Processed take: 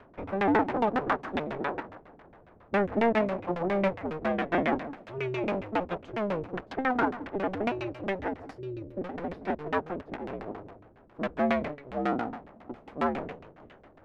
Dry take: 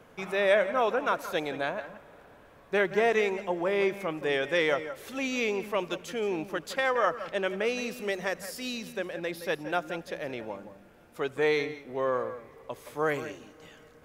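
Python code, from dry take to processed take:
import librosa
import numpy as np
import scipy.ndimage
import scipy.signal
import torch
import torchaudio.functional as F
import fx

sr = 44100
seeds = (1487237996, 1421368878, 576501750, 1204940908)

y = fx.cycle_switch(x, sr, every=2, mode='inverted')
y = fx.filter_lfo_lowpass(y, sr, shape='saw_down', hz=7.3, low_hz=260.0, high_hz=2800.0, q=0.87)
y = fx.spec_box(y, sr, start_s=8.58, length_s=0.43, low_hz=620.0, high_hz=11000.0, gain_db=-14)
y = y * 10.0 ** (1.0 / 20.0)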